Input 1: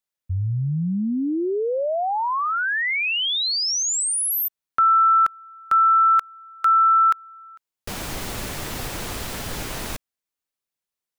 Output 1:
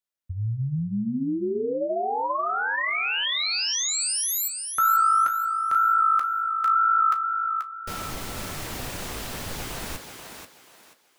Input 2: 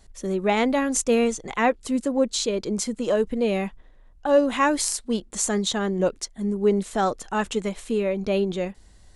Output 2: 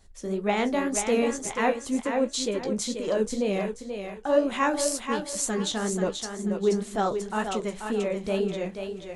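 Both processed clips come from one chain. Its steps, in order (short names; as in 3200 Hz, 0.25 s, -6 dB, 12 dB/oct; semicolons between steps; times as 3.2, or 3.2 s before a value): flange 2 Hz, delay 9.5 ms, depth 9.8 ms, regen -42%; on a send: thinning echo 0.484 s, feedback 30%, high-pass 270 Hz, level -6 dB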